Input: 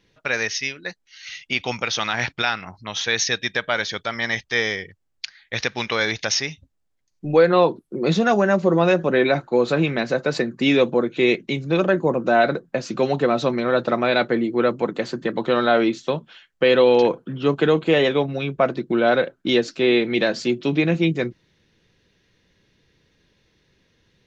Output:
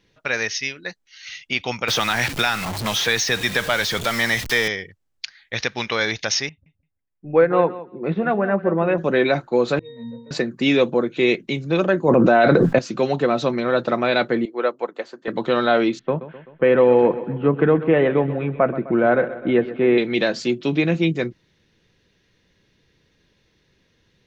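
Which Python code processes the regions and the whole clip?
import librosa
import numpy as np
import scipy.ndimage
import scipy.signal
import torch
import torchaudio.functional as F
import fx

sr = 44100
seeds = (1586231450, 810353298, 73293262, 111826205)

y = fx.chain(x, sr, fx.zero_step(step_db=-26.0),
    fx.band_squash(depth_pct=70), at=(1.88, 4.68))
y = fx.chain(y, sr, fx.lowpass(hz=2400.0, slope=24),
    fx.echo_feedback(ms=169, feedback_pct=16, wet_db=-11.0),
    fx.upward_expand(threshold_db=-29.0, expansion=1.5), at=(6.49, 8.98))
y = fx.chain(y, sr, fx.zero_step(step_db=-32.0),
    fx.octave_resonator(note='A#', decay_s=0.65), at=(9.79, 10.31))
y = fx.chain(y, sr, fx.high_shelf(hz=6200.0, db=-12.0),
    fx.env_flatten(amount_pct=100), at=(12.08, 12.79))
y = fx.chain(y, sr, fx.highpass(hz=540.0, slope=12),
    fx.tilt_shelf(db=4.0, hz=1500.0),
    fx.upward_expand(threshold_db=-33.0, expansion=1.5), at=(14.45, 15.28))
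y = fx.chain(y, sr, fx.lowpass(hz=2100.0, slope=24),
    fx.low_shelf(hz=230.0, db=4.5),
    fx.echo_feedback(ms=128, feedback_pct=56, wet_db=-14.5), at=(15.99, 19.98))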